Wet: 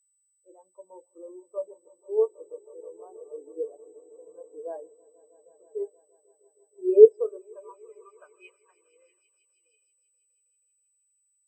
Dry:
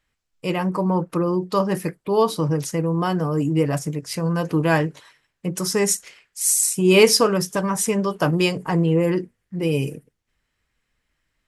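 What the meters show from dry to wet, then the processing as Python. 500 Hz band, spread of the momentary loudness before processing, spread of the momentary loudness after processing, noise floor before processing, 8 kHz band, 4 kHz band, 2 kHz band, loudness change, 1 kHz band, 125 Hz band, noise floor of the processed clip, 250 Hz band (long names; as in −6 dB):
−3.0 dB, 10 LU, 26 LU, −76 dBFS, below −35 dB, below −40 dB, below −30 dB, −3.0 dB, below −25 dB, below −40 dB, −72 dBFS, below −15 dB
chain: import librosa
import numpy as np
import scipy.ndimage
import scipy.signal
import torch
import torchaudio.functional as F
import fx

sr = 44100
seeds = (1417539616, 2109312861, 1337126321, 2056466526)

p1 = fx.weighting(x, sr, curve='A')
p2 = p1 + fx.echo_swell(p1, sr, ms=160, loudest=5, wet_db=-11.0, dry=0)
p3 = fx.dynamic_eq(p2, sr, hz=420.0, q=1.3, threshold_db=-36.0, ratio=4.0, max_db=7)
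p4 = fx.filter_sweep_bandpass(p3, sr, from_hz=600.0, to_hz=4300.0, start_s=7.01, end_s=9.75, q=0.95)
p5 = p4 + 10.0 ** (-34.0 / 20.0) * np.sin(2.0 * np.pi * 8000.0 * np.arange(len(p4)) / sr)
p6 = fx.spectral_expand(p5, sr, expansion=2.5)
y = p6 * 10.0 ** (1.5 / 20.0)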